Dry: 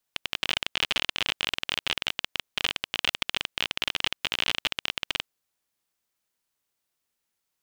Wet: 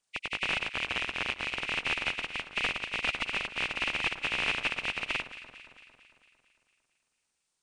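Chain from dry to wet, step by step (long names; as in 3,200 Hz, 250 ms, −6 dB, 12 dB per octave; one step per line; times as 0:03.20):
hearing-aid frequency compression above 1,900 Hz 1.5 to 1
delay that swaps between a low-pass and a high-pass 113 ms, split 1,500 Hz, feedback 76%, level −11.5 dB
0:00.72–0:01.57: ring modulation 65 Hz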